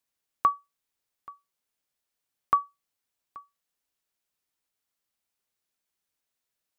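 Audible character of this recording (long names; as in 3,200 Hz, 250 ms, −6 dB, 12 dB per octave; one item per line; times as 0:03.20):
background noise floor −85 dBFS
spectral slope −2.5 dB per octave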